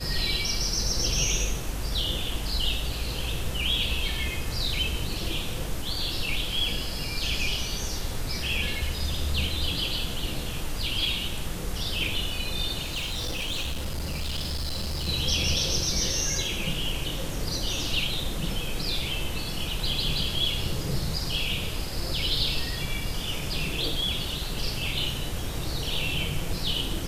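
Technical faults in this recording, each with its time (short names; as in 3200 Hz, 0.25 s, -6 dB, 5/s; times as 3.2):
12.85–15.09 clipped -26.5 dBFS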